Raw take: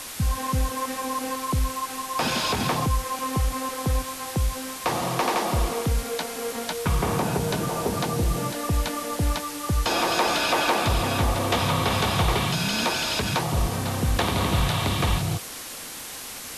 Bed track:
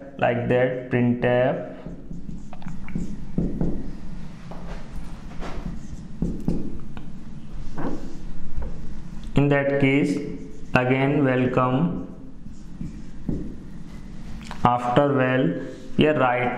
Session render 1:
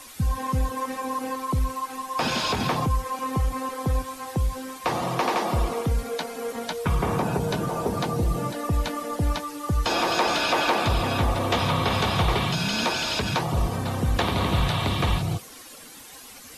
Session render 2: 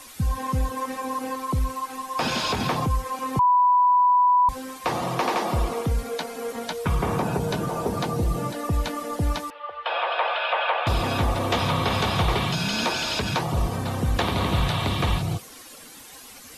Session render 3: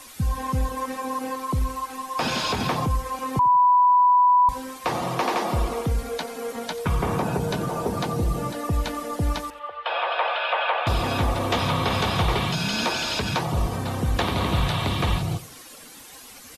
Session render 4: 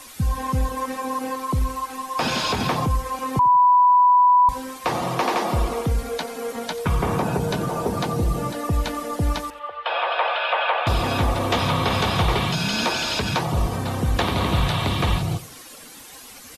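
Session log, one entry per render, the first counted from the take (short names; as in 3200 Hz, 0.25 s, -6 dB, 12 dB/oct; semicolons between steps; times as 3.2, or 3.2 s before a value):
denoiser 11 dB, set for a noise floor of -37 dBFS
3.39–4.49 bleep 989 Hz -14.5 dBFS; 9.5–10.87 elliptic band-pass 540–3200 Hz
feedback echo 89 ms, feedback 30%, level -18.5 dB
gain +2 dB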